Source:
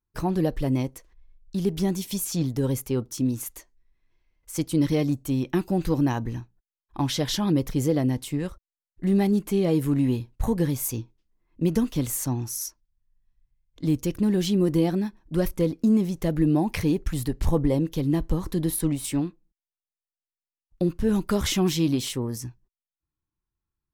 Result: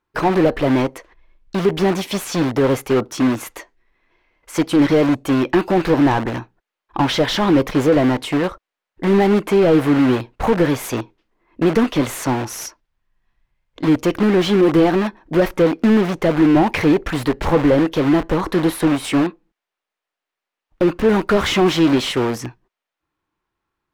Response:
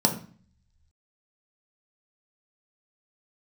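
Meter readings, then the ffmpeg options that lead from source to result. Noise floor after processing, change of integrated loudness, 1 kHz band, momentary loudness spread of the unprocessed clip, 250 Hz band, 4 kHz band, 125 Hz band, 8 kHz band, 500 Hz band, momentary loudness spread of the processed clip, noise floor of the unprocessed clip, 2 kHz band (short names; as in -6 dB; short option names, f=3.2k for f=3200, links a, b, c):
under -85 dBFS, +8.0 dB, +14.5 dB, 9 LU, +7.5 dB, +8.5 dB, +3.0 dB, +0.5 dB, +11.5 dB, 9 LU, under -85 dBFS, +15.5 dB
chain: -filter_complex "[0:a]asplit=2[a][b];[b]aeval=exprs='(mod(20*val(0)+1,2)-1)/20':c=same,volume=-10dB[c];[a][c]amix=inputs=2:normalize=0,bass=f=250:g=-12,treble=f=4k:g=-9,asplit=2[d][e];[e]highpass=f=720:p=1,volume=18dB,asoftclip=type=tanh:threshold=-13.5dB[f];[d][f]amix=inputs=2:normalize=0,lowpass=f=2.7k:p=1,volume=-6dB,lowshelf=f=340:g=10,volume=5dB"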